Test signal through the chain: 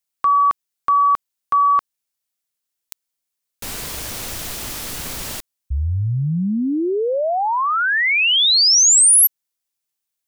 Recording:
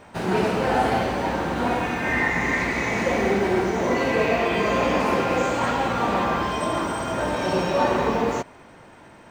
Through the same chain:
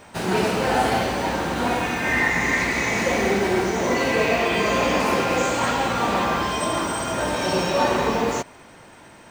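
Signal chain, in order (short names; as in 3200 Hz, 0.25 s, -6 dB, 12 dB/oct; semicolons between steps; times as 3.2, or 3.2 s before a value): high shelf 3300 Hz +9.5 dB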